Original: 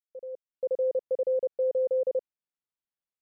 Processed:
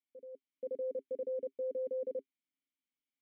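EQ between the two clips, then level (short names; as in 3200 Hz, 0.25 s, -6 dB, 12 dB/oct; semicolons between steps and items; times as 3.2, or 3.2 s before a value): vowel filter i; notch 400 Hz, Q 12; +13.0 dB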